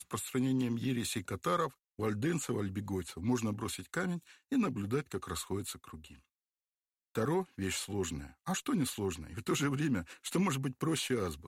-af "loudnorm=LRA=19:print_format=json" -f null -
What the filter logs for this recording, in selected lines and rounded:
"input_i" : "-35.1",
"input_tp" : "-20.0",
"input_lra" : "4.2",
"input_thresh" : "-45.2",